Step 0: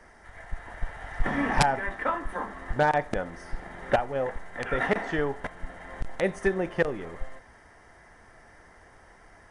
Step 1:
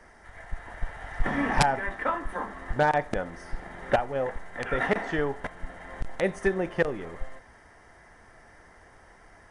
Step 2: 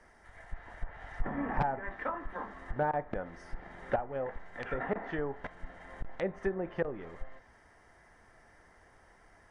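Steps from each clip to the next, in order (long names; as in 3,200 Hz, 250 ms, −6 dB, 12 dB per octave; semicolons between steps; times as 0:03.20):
no processing that can be heard
treble cut that deepens with the level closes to 1,300 Hz, closed at −22.5 dBFS; level −7 dB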